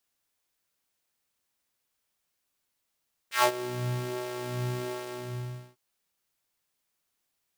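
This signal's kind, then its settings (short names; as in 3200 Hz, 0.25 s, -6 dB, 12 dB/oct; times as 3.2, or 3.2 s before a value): synth patch with filter wobble B2, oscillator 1 square, interval 0 st, oscillator 2 level -6.5 dB, noise -17.5 dB, filter highpass, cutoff 150 Hz, Q 1.7, filter envelope 4 oct, filter decay 0.17 s, filter sustain 20%, attack 0.12 s, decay 0.08 s, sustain -18 dB, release 0.85 s, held 1.60 s, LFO 1.3 Hz, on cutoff 0.8 oct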